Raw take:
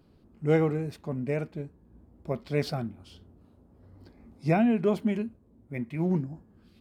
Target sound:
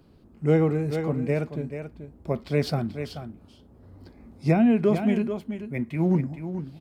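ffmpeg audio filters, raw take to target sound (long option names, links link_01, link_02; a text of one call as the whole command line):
ffmpeg -i in.wav -filter_complex "[0:a]aecho=1:1:434:0.316,acrossover=split=430[link_01][link_02];[link_02]acompressor=threshold=-30dB:ratio=6[link_03];[link_01][link_03]amix=inputs=2:normalize=0,volume=4.5dB" out.wav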